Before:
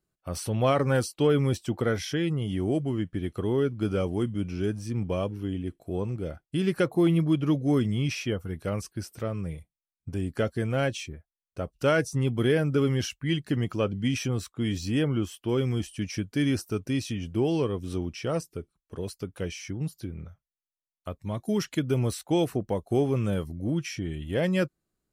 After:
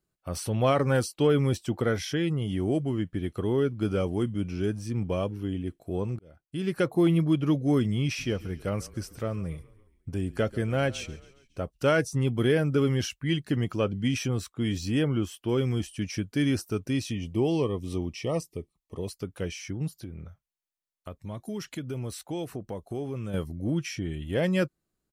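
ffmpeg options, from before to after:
ffmpeg -i in.wav -filter_complex "[0:a]asplit=3[link_01][link_02][link_03];[link_01]afade=type=out:start_time=8.18:duration=0.02[link_04];[link_02]asplit=5[link_05][link_06][link_07][link_08][link_09];[link_06]adelay=138,afreqshift=-33,volume=-20dB[link_10];[link_07]adelay=276,afreqshift=-66,volume=-25.2dB[link_11];[link_08]adelay=414,afreqshift=-99,volume=-30.4dB[link_12];[link_09]adelay=552,afreqshift=-132,volume=-35.6dB[link_13];[link_05][link_10][link_11][link_12][link_13]amix=inputs=5:normalize=0,afade=type=in:start_time=8.18:duration=0.02,afade=type=out:start_time=11.62:duration=0.02[link_14];[link_03]afade=type=in:start_time=11.62:duration=0.02[link_15];[link_04][link_14][link_15]amix=inputs=3:normalize=0,asettb=1/sr,asplit=3[link_16][link_17][link_18];[link_16]atrim=end=17.114[link_19];[link_17]atrim=start=17.11:end=19.12,asetpts=PTS-STARTPTS,afade=type=in:duration=0.004:curve=qsin,afade=type=out:start_time=2.006:duration=0.004:curve=qsin,asuperstop=centerf=1500:order=12:qfactor=3[link_20];[link_18]atrim=start=19.116[link_21];[link_19][link_20]acrossfade=duration=0.004:curve1=hsin:curve2=qsin[link_22];[link_22][link_21]acrossfade=duration=0.004:curve1=qsin:curve2=hsin,asettb=1/sr,asplit=3[link_23][link_24][link_25];[link_23]atrim=end=19.914[link_26];[link_24]atrim=start=19.91:end=23.34,asetpts=PTS-STARTPTS,afade=type=in:duration=0.004:curve=qsin,afade=type=out:start_time=3.426:duration=0.004:curve=qsin,acompressor=threshold=-37dB:ratio=2:attack=3.2:release=140:knee=1:detection=peak[link_27];[link_25]atrim=start=23.336[link_28];[link_26][link_27]acrossfade=duration=0.004:curve1=hsin:curve2=qsin[link_29];[link_29][link_28]acrossfade=duration=0.004:curve1=qsin:curve2=hsin,asplit=2[link_30][link_31];[link_30]atrim=end=6.19,asetpts=PTS-STARTPTS,afade=type=out:start_time=6.186:duration=0.004:curve=hsin[link_32];[link_31]atrim=start=6.19,asetpts=PTS-STARTPTS,afade=type=in:duration=0.71[link_33];[link_32][link_33]concat=n=2:v=0:a=1" out.wav

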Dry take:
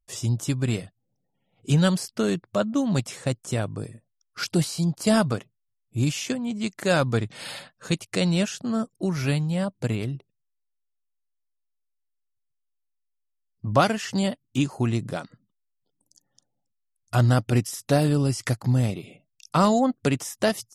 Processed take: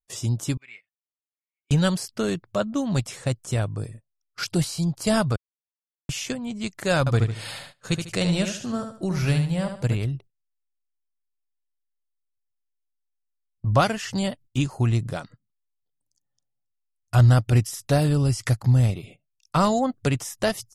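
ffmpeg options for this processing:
ffmpeg -i in.wav -filter_complex "[0:a]asettb=1/sr,asplit=3[link_01][link_02][link_03];[link_01]atrim=end=0.574[link_04];[link_02]atrim=start=0.57:end=1.71,asetpts=PTS-STARTPTS,afade=type=in:duration=0.004:curve=qsin,afade=type=out:start_time=1.136:duration=0.004:curve=qsin,bandpass=frequency=2200:width_type=q:width=9[link_05];[link_03]atrim=start=1.706[link_06];[link_04][link_05]acrossfade=duration=0.004:curve1=hsin:curve2=qsin[link_07];[link_07][link_06]acrossfade=duration=0.004:curve1=qsin:curve2=hsin,asettb=1/sr,asplit=3[link_08][link_09][link_10];[link_08]atrim=end=6.994[link_11];[link_09]atrim=start=6.99:end=9.97,asetpts=PTS-STARTPTS,afade=type=in:duration=0.004:curve=qsin,afade=type=out:start_time=2.976:duration=0.004:curve=qsin,aecho=1:1:74|148|222|296:0.447|0.138|0.0429|0.0133,atrim=end_sample=131418[link_12];[link_10]atrim=start=9.966[link_13];[link_11][link_12]acrossfade=duration=0.004:curve1=hsin:curve2=qsin[link_14];[link_14][link_13]acrossfade=duration=0.004:curve1=qsin:curve2=hsin,asplit=3[link_15][link_16][link_17];[link_15]atrim=end=5.36,asetpts=PTS-STARTPTS,afade=type=out:start_time=5.356:duration=0.004:curve=hsin[link_18];[link_16]atrim=start=5.36:end=6.09,asetpts=PTS-STARTPTS,volume=0[link_19];[link_17]atrim=start=6.09,asetpts=PTS-STARTPTS,afade=type=in:duration=0.004:curve=hsin[link_20];[link_18][link_19][link_20]concat=n=3:v=0:a=1,agate=range=-15dB:threshold=-45dB:ratio=16:detection=peak,asubboost=boost=4.5:cutoff=98" out.wav

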